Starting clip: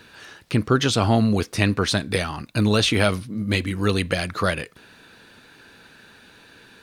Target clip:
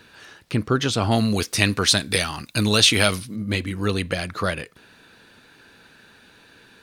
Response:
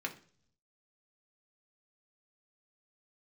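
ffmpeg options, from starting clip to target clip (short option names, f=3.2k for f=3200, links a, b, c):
-filter_complex "[0:a]asettb=1/sr,asplit=3[a][b][c];[a]atrim=end=1.114[d];[b]atrim=start=1.11:end=3.36,asetpts=PTS-STARTPTS,afade=t=in:d=0.004:c=qsin,afade=t=out:st=2.246:d=0.004:c=qsin,highshelf=f=2.4k:g=12[e];[c]atrim=start=3.356[f];[d][e]acrossfade=d=0.004:c1=hsin:c2=qsin[g];[g][f]acrossfade=d=0.004:c1=qsin:c2=hsin,volume=-2dB"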